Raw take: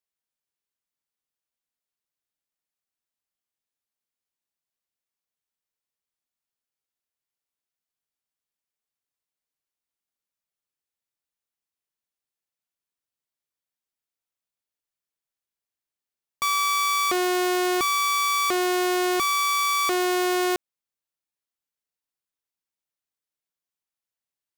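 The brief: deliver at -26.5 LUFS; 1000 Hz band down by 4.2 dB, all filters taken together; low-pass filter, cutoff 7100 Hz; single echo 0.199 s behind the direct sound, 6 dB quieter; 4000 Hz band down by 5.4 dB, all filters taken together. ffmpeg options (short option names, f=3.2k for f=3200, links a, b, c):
-af "lowpass=7.1k,equalizer=f=1k:t=o:g=-5,equalizer=f=4k:t=o:g=-6,aecho=1:1:199:0.501,volume=-3dB"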